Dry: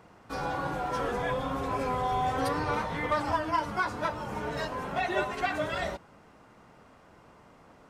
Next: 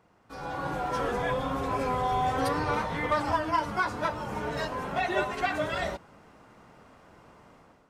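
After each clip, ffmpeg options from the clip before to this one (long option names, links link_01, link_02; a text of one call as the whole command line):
ffmpeg -i in.wav -af "dynaudnorm=framelen=360:gausssize=3:maxgain=10.5dB,volume=-9dB" out.wav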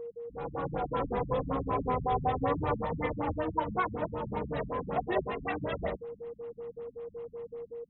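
ffmpeg -i in.wav -af "equalizer=frequency=1500:width_type=o:width=0.3:gain=-8,aeval=exprs='val(0)+0.0141*sin(2*PI*470*n/s)':channel_layout=same,afftfilt=real='re*lt(b*sr/1024,220*pow(4100/220,0.5+0.5*sin(2*PI*5.3*pts/sr)))':imag='im*lt(b*sr/1024,220*pow(4100/220,0.5+0.5*sin(2*PI*5.3*pts/sr)))':win_size=1024:overlap=0.75" out.wav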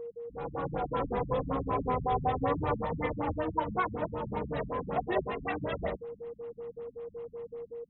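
ffmpeg -i in.wav -af anull out.wav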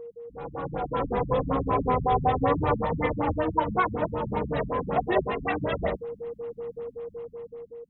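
ffmpeg -i in.wav -af "dynaudnorm=framelen=210:gausssize=9:maxgain=6dB" out.wav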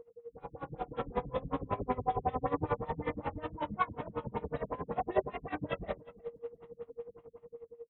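ffmpeg -i in.wav -af "flanger=delay=20:depth=5.5:speed=0.55,aecho=1:1:357|714:0.0841|0.0135,aeval=exprs='val(0)*pow(10,-21*(0.5-0.5*cos(2*PI*11*n/s))/20)':channel_layout=same,volume=-1.5dB" out.wav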